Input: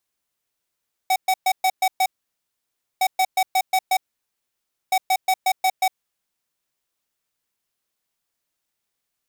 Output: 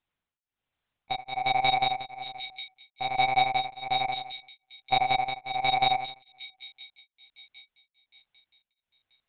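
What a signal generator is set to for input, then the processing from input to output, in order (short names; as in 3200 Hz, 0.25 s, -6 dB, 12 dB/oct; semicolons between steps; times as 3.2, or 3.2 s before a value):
beep pattern square 754 Hz, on 0.06 s, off 0.12 s, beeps 6, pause 0.95 s, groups 3, -18 dBFS
on a send: split-band echo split 2600 Hz, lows 85 ms, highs 0.577 s, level -4 dB; on the sum: monotone LPC vocoder at 8 kHz 130 Hz; beating tremolo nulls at 1.2 Hz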